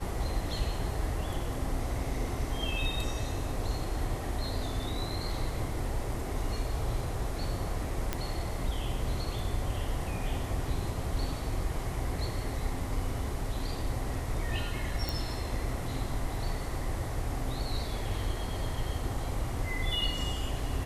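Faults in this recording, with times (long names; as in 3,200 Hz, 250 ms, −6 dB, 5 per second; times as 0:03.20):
0:08.13: click −15 dBFS
0:15.09: click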